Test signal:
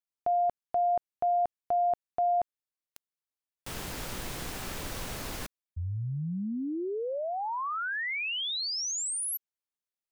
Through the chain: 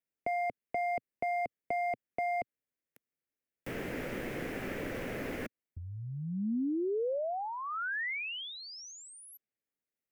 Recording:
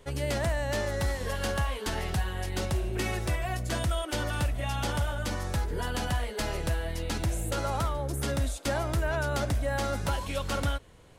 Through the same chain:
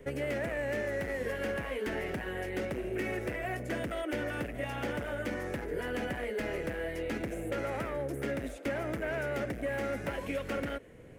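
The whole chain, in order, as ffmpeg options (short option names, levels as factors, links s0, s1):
-filter_complex "[0:a]asoftclip=type=hard:threshold=0.0447,equalizer=f=125:t=o:w=1:g=5,equalizer=f=250:t=o:w=1:g=8,equalizer=f=500:t=o:w=1:g=8,equalizer=f=1000:t=o:w=1:g=-8,equalizer=f=2000:t=o:w=1:g=9,equalizer=f=4000:t=o:w=1:g=-11,equalizer=f=8000:t=o:w=1:g=-4,acrossover=split=250|1200|4600[s0][s1][s2][s3];[s0]acompressor=threshold=0.00708:ratio=4[s4];[s1]acompressor=threshold=0.0251:ratio=4[s5];[s2]acompressor=threshold=0.0141:ratio=4[s6];[s3]acompressor=threshold=0.00178:ratio=4[s7];[s4][s5][s6][s7]amix=inputs=4:normalize=0,volume=0.841"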